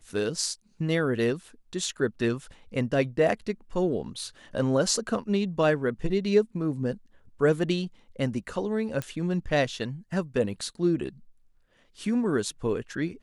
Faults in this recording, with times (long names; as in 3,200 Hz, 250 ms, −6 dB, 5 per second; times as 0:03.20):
0:09.02: click −17 dBFS